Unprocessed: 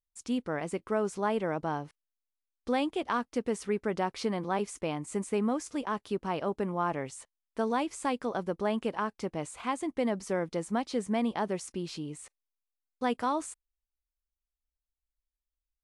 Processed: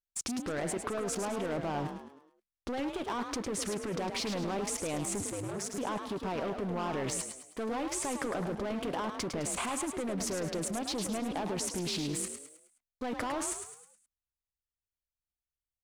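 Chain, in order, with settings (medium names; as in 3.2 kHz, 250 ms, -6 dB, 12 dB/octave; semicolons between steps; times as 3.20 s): in parallel at +1 dB: peak limiter -25 dBFS, peak gain reduction 8.5 dB; on the sum: waveshaping leveller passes 3; level held to a coarse grid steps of 16 dB; 5.20–5.78 s: ring modulator 100 Hz; on a send: frequency-shifting echo 105 ms, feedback 43%, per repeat +42 Hz, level -7 dB; on the sum: loudspeaker Doppler distortion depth 0.27 ms; trim -2.5 dB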